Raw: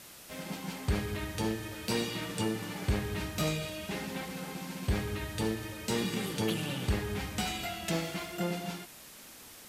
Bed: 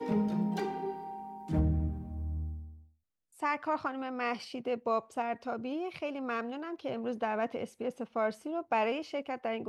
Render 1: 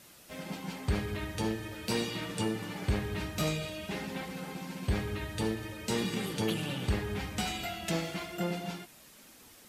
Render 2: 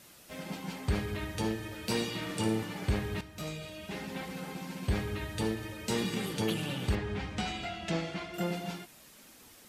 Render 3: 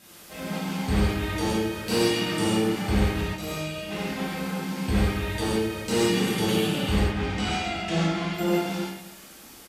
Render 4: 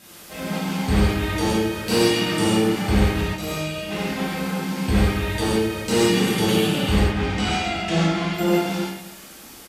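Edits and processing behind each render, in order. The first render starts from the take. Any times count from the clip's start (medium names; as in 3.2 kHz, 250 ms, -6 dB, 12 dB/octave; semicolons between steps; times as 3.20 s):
noise reduction 6 dB, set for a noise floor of -51 dBFS
2.21–2.63 s: flutter echo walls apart 9.3 m, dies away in 0.48 s; 3.21–4.31 s: fade in, from -13 dB; 6.95–8.34 s: distance through air 88 m
echo from a far wall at 45 m, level -14 dB; gated-style reverb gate 190 ms flat, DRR -8 dB
trim +4.5 dB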